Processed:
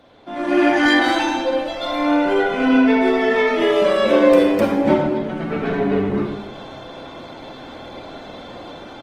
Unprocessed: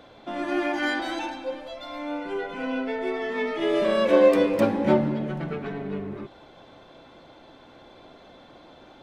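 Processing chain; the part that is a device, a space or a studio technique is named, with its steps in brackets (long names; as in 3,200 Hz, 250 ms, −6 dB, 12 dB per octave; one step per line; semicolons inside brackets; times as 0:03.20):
speakerphone in a meeting room (convolution reverb RT60 0.85 s, pre-delay 30 ms, DRR 2.5 dB; far-end echo of a speakerphone 220 ms, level −25 dB; automatic gain control gain up to 13 dB; level −1 dB; Opus 20 kbit/s 48,000 Hz)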